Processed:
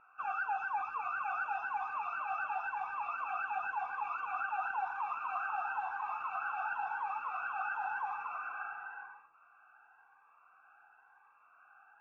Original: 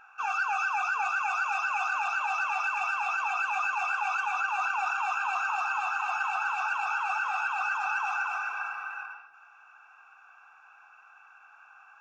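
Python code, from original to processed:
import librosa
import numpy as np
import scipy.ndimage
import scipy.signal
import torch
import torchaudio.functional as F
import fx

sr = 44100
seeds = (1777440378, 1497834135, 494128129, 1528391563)

y = scipy.signal.sosfilt(scipy.signal.butter(2, 1300.0, 'lowpass', fs=sr, output='sos'), x)
y = fx.notch_cascade(y, sr, direction='rising', hz=0.96)
y = F.gain(torch.from_numpy(y), -1.5).numpy()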